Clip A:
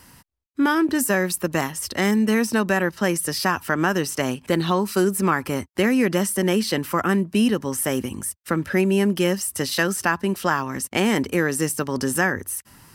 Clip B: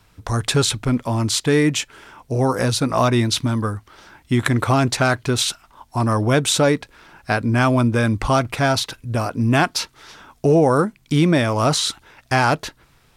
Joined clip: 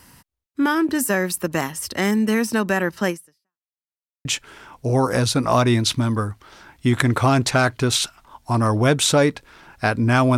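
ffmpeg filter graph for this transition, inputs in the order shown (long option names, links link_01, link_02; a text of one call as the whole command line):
ffmpeg -i cue0.wav -i cue1.wav -filter_complex "[0:a]apad=whole_dur=10.37,atrim=end=10.37,asplit=2[link_01][link_02];[link_01]atrim=end=3.72,asetpts=PTS-STARTPTS,afade=type=out:start_time=3.09:duration=0.63:curve=exp[link_03];[link_02]atrim=start=3.72:end=4.25,asetpts=PTS-STARTPTS,volume=0[link_04];[1:a]atrim=start=1.71:end=7.83,asetpts=PTS-STARTPTS,afade=type=in:duration=0.004:curve=hsin[link_05];[link_03][link_04][link_05]concat=n=3:v=0:a=1" out.wav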